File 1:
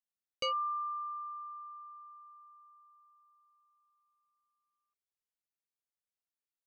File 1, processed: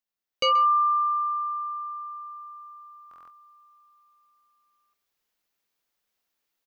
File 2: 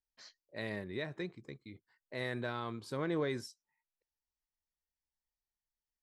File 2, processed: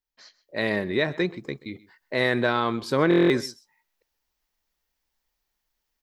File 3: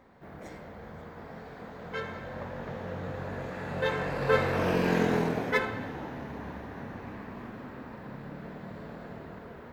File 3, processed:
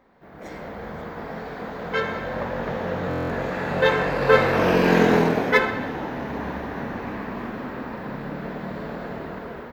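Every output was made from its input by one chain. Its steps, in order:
bell 9000 Hz -7 dB 0.7 oct; echo 0.13 s -21 dB; AGC gain up to 12 dB; bell 100 Hz -7.5 dB 1.1 oct; stuck buffer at 3.09, samples 1024, times 8; match loudness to -24 LUFS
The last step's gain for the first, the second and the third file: +4.0, +4.0, -0.5 dB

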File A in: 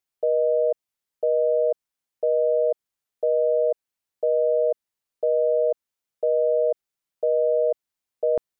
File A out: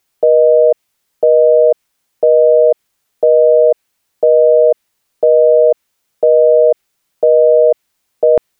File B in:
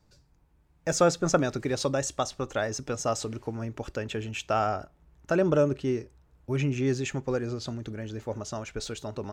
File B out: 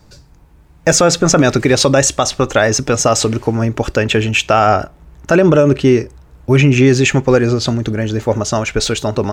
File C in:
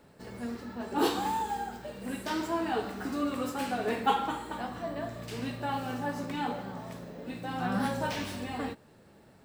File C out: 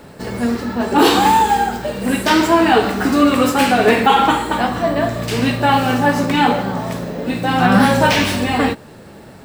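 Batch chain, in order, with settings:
dynamic EQ 2400 Hz, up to +4 dB, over -46 dBFS, Q 1.3; limiter -20.5 dBFS; normalise peaks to -2 dBFS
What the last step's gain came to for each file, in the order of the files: +18.5, +18.5, +18.5 dB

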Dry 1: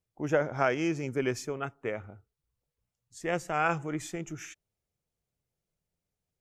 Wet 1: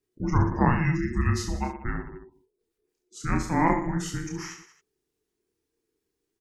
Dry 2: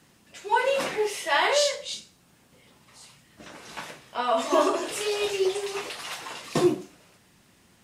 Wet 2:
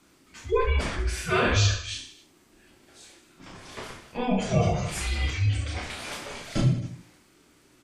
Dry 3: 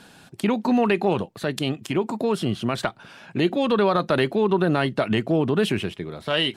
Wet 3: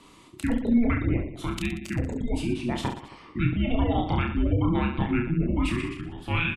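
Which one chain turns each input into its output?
spectral gate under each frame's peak -30 dB strong; frequency shift -480 Hz; reverse bouncing-ball echo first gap 30 ms, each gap 1.3×, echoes 5; match loudness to -27 LUFS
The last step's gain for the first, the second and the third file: +4.0, -2.0, -5.0 dB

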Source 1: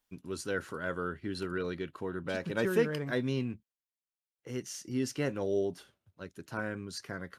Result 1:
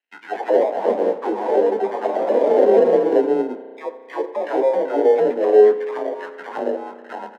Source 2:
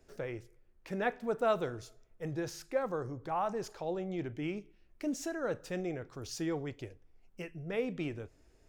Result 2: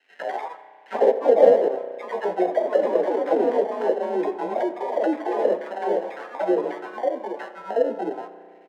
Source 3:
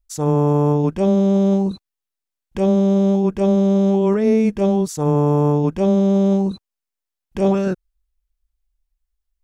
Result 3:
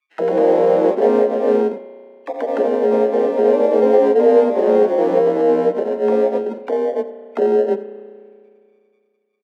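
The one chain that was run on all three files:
low-pass opened by the level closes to 1300 Hz, open at -13 dBFS; frequency shift +28 Hz; compressor, threshold -22 dBFS; limiter -21.5 dBFS; chorus 2.2 Hz, delay 15 ms, depth 2.2 ms; sample-and-hold 38×; auto-wah 450–2400 Hz, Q 3.6, down, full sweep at -34.5 dBFS; steep high-pass 190 Hz 48 dB/oct; echoes that change speed 0.117 s, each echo +2 st, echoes 2; echo 86 ms -17.5 dB; spring tank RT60 2.2 s, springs 33 ms, chirp 35 ms, DRR 12.5 dB; normalise peaks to -2 dBFS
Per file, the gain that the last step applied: +24.0, +21.5, +22.0 dB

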